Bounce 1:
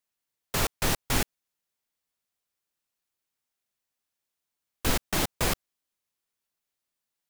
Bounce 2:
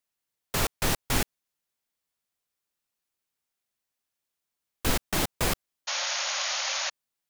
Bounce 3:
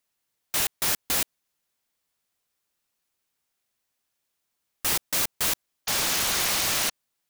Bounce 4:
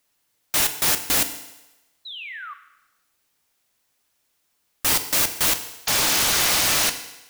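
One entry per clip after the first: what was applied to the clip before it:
painted sound noise, 5.87–6.90 s, 520–6900 Hz -30 dBFS
integer overflow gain 25 dB; trim +6 dB
peak limiter -22.5 dBFS, peak gain reduction 3.5 dB; painted sound fall, 2.05–2.54 s, 1.1–4.1 kHz -44 dBFS; FDN reverb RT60 0.98 s, low-frequency decay 0.8×, high-frequency decay 1×, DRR 8 dB; trim +8 dB

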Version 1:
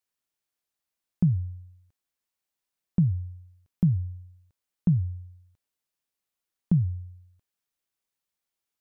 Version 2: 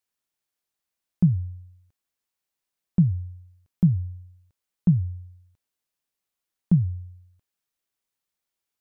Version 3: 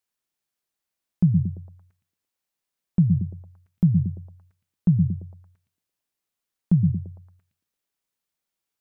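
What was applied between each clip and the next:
dynamic bell 180 Hz, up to +4 dB, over -33 dBFS, Q 4.4; trim +1 dB
repeats whose band climbs or falls 114 ms, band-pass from 170 Hz, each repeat 0.7 oct, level -3 dB

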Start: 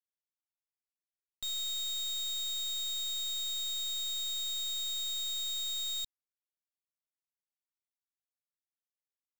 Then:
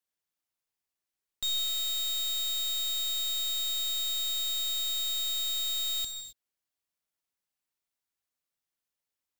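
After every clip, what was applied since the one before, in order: gated-style reverb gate 290 ms flat, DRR 6.5 dB; trim +5.5 dB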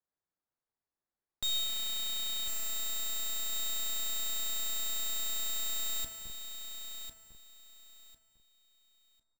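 local Wiener filter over 15 samples; in parallel at -12 dB: Schmitt trigger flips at -52.5 dBFS; on the sum: feedback delay 1050 ms, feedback 23%, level -8.5 dB; trim +1.5 dB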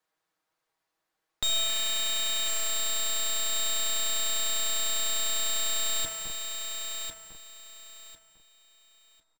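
comb 6.3 ms, depth 53%; overdrive pedal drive 12 dB, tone 3.4 kHz, clips at -24 dBFS; trim +8 dB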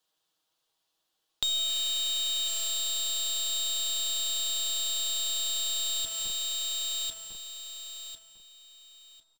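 resonant high shelf 2.6 kHz +6 dB, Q 3; compression 3:1, threshold -29 dBFS, peak gain reduction 10 dB; trim -1 dB

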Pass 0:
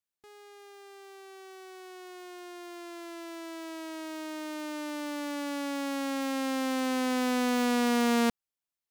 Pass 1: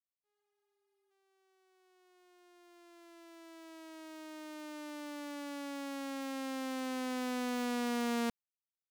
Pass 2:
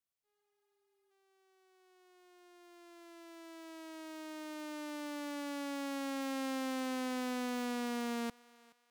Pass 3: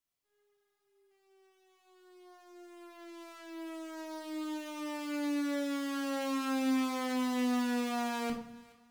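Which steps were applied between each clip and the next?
expander -37 dBFS; spectral replace 0.38–1.08 s, 630–8500 Hz before; trim -8.5 dB
peak limiter -34.5 dBFS, peak gain reduction 6.5 dB; thinning echo 425 ms, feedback 35%, high-pass 630 Hz, level -21 dB; trim +2 dB
simulated room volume 840 m³, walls furnished, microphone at 3 m

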